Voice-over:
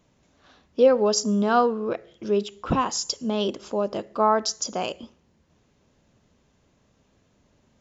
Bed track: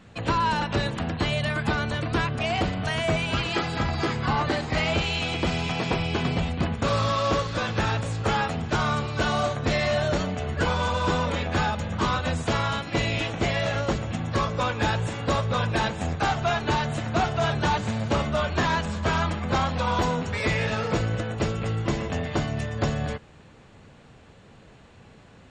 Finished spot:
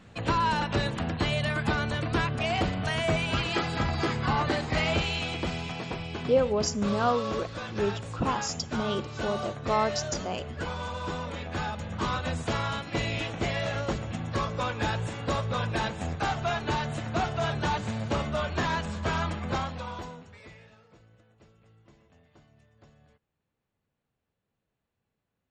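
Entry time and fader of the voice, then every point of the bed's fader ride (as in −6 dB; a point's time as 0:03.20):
5.50 s, −6.0 dB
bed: 0:04.96 −2 dB
0:05.95 −9.5 dB
0:11.30 −9.5 dB
0:12.16 −4.5 dB
0:19.49 −4.5 dB
0:20.88 −32.5 dB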